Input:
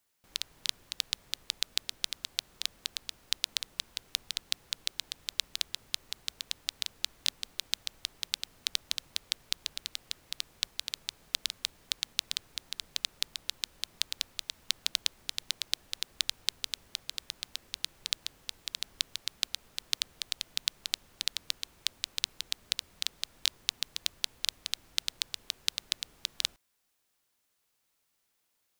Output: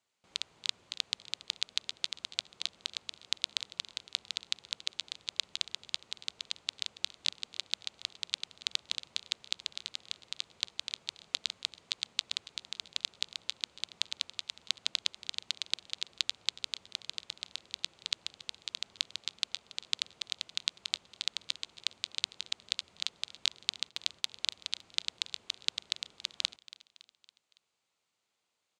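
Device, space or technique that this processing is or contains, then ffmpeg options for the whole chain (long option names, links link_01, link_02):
car door speaker: -filter_complex "[0:a]highpass=110,equalizer=frequency=140:width_type=q:width=4:gain=-4,equalizer=frequency=280:width_type=q:width=4:gain=-5,equalizer=frequency=1700:width_type=q:width=4:gain=-5,equalizer=frequency=5500:width_type=q:width=4:gain=-6,lowpass=frequency=7200:width=0.5412,lowpass=frequency=7200:width=1.3066,asettb=1/sr,asplit=3[link_01][link_02][link_03];[link_01]atrim=end=23.894[link_04];[link_02]atrim=start=23.89:end=24.35,asetpts=PTS-STARTPTS,afade=type=in:duration=0.004:curve=qsin,afade=type=out:start_time=0.456:duration=0.004:curve=qsin,agate=range=-9dB:threshold=-53dB:ratio=16:detection=peak[link_05];[link_03]atrim=start=24.346[link_06];[link_04][link_05]acrossfade=duration=0.004:curve1=hsin:curve2=qsin[link_07];[link_07][link_06]acrossfade=duration=0.004:curve1=qsin:curve2=hsin,aecho=1:1:280|560|840|1120:0.119|0.063|0.0334|0.0177"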